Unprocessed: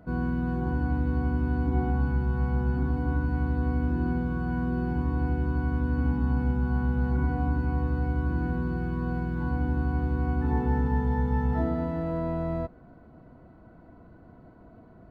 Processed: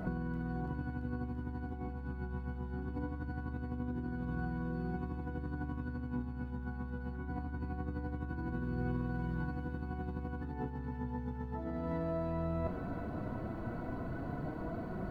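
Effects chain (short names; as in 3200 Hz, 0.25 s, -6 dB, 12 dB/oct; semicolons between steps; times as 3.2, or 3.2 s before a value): negative-ratio compressor -38 dBFS, ratio -1; flange 0.2 Hz, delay 5.3 ms, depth 6.2 ms, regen +62%; on a send: thin delay 0.338 s, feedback 71%, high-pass 1600 Hz, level -5 dB; on the sum: gain +4.5 dB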